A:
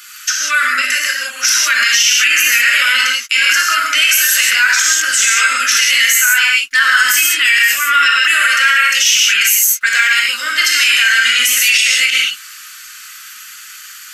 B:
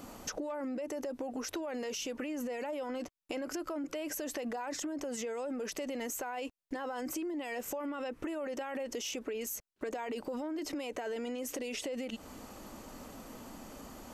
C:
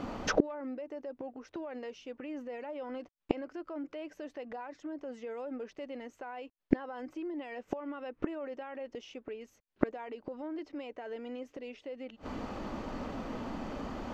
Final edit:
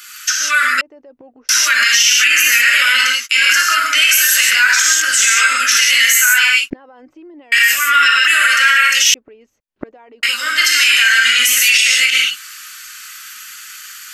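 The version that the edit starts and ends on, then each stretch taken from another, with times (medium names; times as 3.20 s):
A
0.81–1.49 s: from C
6.70–7.52 s: from C
9.14–10.23 s: from C
not used: B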